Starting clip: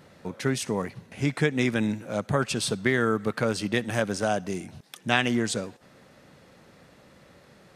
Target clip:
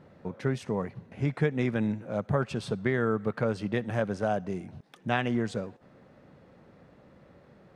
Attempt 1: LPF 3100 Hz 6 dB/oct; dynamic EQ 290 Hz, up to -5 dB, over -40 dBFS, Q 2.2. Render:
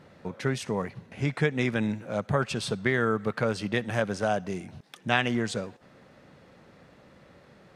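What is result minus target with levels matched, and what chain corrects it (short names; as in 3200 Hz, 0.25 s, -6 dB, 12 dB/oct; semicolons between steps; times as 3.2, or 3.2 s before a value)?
4000 Hz band +6.5 dB
LPF 910 Hz 6 dB/oct; dynamic EQ 290 Hz, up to -5 dB, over -40 dBFS, Q 2.2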